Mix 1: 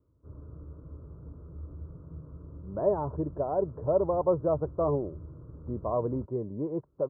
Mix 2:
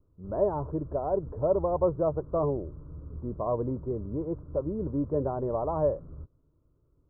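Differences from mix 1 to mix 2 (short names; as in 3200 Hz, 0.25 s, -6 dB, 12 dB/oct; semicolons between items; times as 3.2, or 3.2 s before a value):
speech: entry -2.45 s; master: remove HPF 63 Hz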